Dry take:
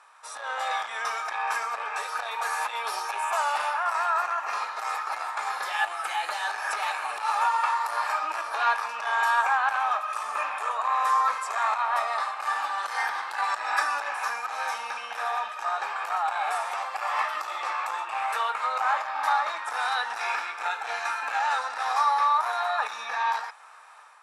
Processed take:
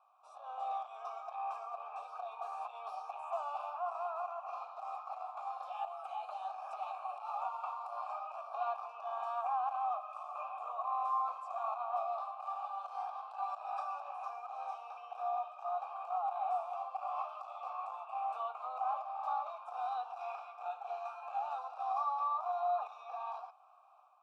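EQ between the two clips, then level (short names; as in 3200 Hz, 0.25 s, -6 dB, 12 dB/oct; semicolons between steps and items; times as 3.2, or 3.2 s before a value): vowel filter a; low shelf 210 Hz +7.5 dB; fixed phaser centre 780 Hz, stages 4; -2.0 dB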